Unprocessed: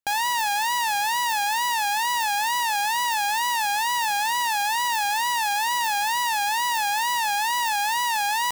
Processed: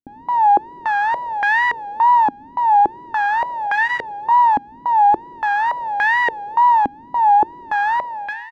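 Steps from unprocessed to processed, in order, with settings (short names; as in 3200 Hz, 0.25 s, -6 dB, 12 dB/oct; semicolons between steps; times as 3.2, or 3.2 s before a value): ending faded out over 0.57 s; in parallel at -6.5 dB: bit-crush 5-bit; 3.66–4.31 on the sum: notch comb 240 Hz; echo 1.018 s -21 dB; stepped low-pass 3.5 Hz 270–1800 Hz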